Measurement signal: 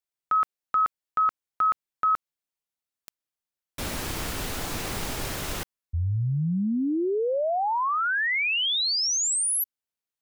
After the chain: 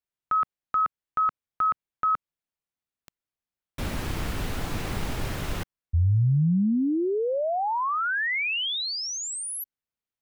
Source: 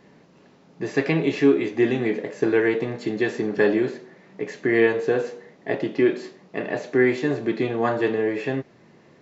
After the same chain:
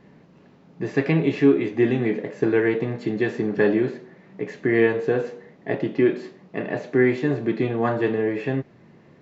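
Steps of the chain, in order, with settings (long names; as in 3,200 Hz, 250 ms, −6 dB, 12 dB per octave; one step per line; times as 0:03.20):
bass and treble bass +6 dB, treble −7 dB
level −1 dB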